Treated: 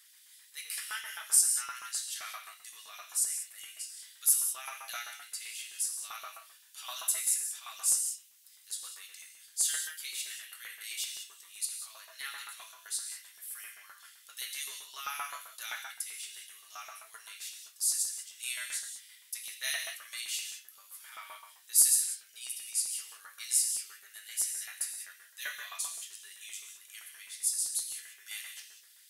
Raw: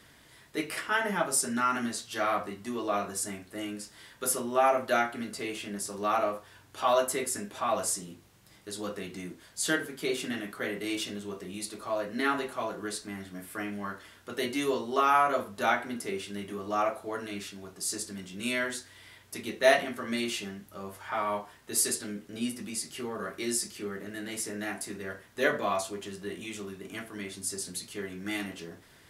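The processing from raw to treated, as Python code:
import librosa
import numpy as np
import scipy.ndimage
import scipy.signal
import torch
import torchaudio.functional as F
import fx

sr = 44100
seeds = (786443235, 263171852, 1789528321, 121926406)

y = scipy.signal.lfilter([1.0, -0.97], [1.0], x)
y = fx.rev_gated(y, sr, seeds[0], gate_ms=220, shape='flat', drr_db=3.0)
y = fx.filter_lfo_highpass(y, sr, shape='saw_up', hz=7.7, low_hz=930.0, high_hz=3200.0, q=0.83)
y = F.gain(torch.from_numpy(y), 2.5).numpy()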